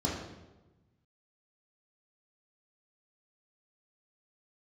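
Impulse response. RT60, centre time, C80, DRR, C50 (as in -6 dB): 1.1 s, 56 ms, 5.0 dB, -4.5 dB, 2.0 dB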